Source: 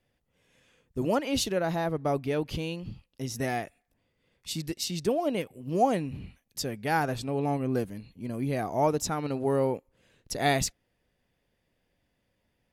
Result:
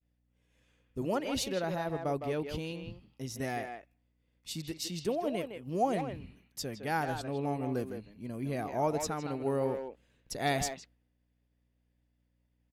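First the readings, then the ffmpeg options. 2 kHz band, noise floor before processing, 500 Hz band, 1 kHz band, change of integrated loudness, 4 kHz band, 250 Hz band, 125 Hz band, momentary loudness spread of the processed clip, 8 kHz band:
-5.0 dB, -76 dBFS, -4.5 dB, -5.0 dB, -5.0 dB, -5.0 dB, -5.0 dB, -5.5 dB, 12 LU, -5.5 dB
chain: -filter_complex "[0:a]aeval=exprs='val(0)+0.000794*(sin(2*PI*60*n/s)+sin(2*PI*2*60*n/s)/2+sin(2*PI*3*60*n/s)/3+sin(2*PI*4*60*n/s)/4+sin(2*PI*5*60*n/s)/5)':c=same,agate=range=-33dB:threshold=-57dB:ratio=3:detection=peak,asplit=2[a][b];[b]adelay=160,highpass=300,lowpass=3.4k,asoftclip=type=hard:threshold=-21dB,volume=-6dB[c];[a][c]amix=inputs=2:normalize=0,volume=-5.5dB"

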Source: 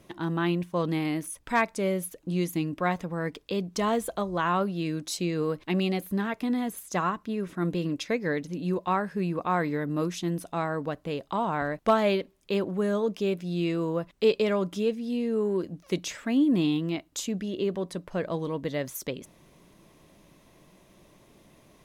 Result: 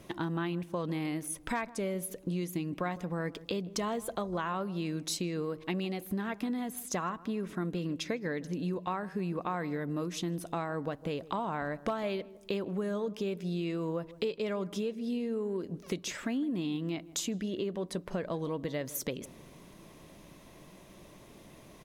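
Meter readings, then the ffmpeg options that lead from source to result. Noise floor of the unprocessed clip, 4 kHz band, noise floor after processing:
-59 dBFS, -4.5 dB, -54 dBFS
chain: -filter_complex "[0:a]acompressor=threshold=-35dB:ratio=6,asplit=2[a][b];[b]adelay=157,lowpass=f=900:p=1,volume=-16.5dB,asplit=2[c][d];[d]adelay=157,lowpass=f=900:p=1,volume=0.5,asplit=2[e][f];[f]adelay=157,lowpass=f=900:p=1,volume=0.5,asplit=2[g][h];[h]adelay=157,lowpass=f=900:p=1,volume=0.5[i];[a][c][e][g][i]amix=inputs=5:normalize=0,volume=3.5dB"

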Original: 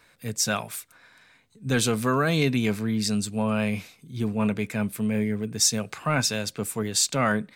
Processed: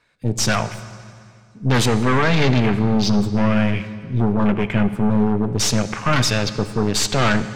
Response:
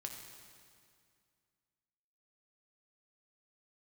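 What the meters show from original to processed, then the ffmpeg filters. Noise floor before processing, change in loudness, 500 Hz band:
-60 dBFS, +6.0 dB, +6.0 dB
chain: -filter_complex "[0:a]aeval=exprs='0.376*sin(PI/2*3.16*val(0)/0.376)':c=same,lowpass=8.4k,aeval=exprs='0.422*(cos(1*acos(clip(val(0)/0.422,-1,1)))-cos(1*PI/2))+0.106*(cos(4*acos(clip(val(0)/0.422,-1,1)))-cos(4*PI/2))+0.0266*(cos(5*acos(clip(val(0)/0.422,-1,1)))-cos(5*PI/2))':c=same,afwtdn=0.0631,asplit=2[a][b];[1:a]atrim=start_sample=2205,lowpass=7.2k[c];[b][c]afir=irnorm=-1:irlink=0,volume=-1dB[d];[a][d]amix=inputs=2:normalize=0,volume=-8dB"

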